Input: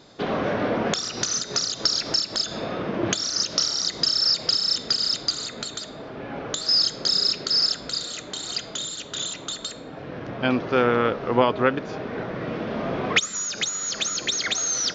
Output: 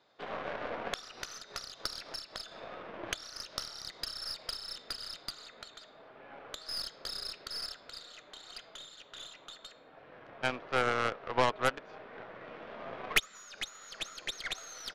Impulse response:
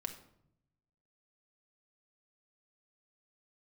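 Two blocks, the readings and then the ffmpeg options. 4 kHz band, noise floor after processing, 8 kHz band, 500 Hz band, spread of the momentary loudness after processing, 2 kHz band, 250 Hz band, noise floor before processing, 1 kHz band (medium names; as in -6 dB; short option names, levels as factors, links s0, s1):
-16.5 dB, -57 dBFS, -20.0 dB, -13.0 dB, 18 LU, -7.5 dB, -19.0 dB, -39 dBFS, -8.0 dB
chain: -filter_complex "[0:a]acrossover=split=500 3900:gain=0.2 1 0.178[s0][s1][s2];[s0][s1][s2]amix=inputs=3:normalize=0,aeval=exprs='0.447*(cos(1*acos(clip(val(0)/0.447,-1,1)))-cos(1*PI/2))+0.2*(cos(3*acos(clip(val(0)/0.447,-1,1)))-cos(3*PI/2))+0.0398*(cos(4*acos(clip(val(0)/0.447,-1,1)))-cos(4*PI/2))+0.178*(cos(5*acos(clip(val(0)/0.447,-1,1)))-cos(5*PI/2))+0.0891*(cos(7*acos(clip(val(0)/0.447,-1,1)))-cos(7*PI/2))':c=same,aresample=32000,aresample=44100,volume=0.841"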